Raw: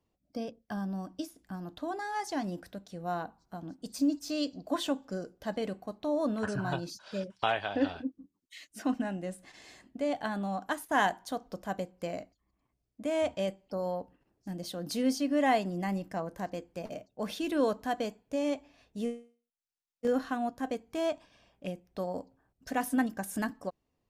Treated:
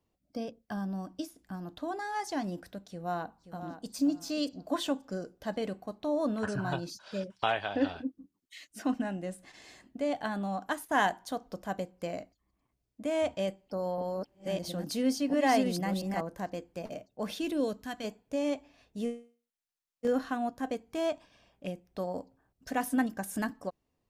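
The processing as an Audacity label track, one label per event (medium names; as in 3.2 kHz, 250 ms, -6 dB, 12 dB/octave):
2.900000	3.950000	echo throw 530 ms, feedback 20%, level -11 dB
13.300000	16.210000	chunks repeated in reverse 679 ms, level -1.5 dB
17.510000	18.030000	peaking EQ 1.7 kHz -> 430 Hz -12 dB 1.7 oct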